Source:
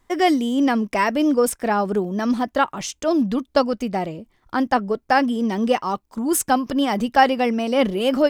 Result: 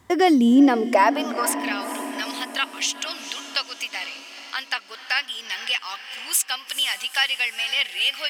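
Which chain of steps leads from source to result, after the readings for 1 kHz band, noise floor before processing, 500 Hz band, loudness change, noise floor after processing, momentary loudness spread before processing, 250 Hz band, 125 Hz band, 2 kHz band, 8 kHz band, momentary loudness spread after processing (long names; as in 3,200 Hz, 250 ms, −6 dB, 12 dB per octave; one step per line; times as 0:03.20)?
−5.0 dB, −66 dBFS, −7.0 dB, −1.5 dB, −44 dBFS, 7 LU, −2.5 dB, below −15 dB, +2.0 dB, +3.0 dB, 13 LU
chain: high-pass filter sweep 95 Hz → 2,600 Hz, 0:00.10–0:01.65
feedback delay with all-pass diffusion 460 ms, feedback 54%, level −15 dB
downward compressor 1.5 to 1, threshold −39 dBFS, peak gain reduction 11 dB
tape wow and flutter 25 cents
level +8.5 dB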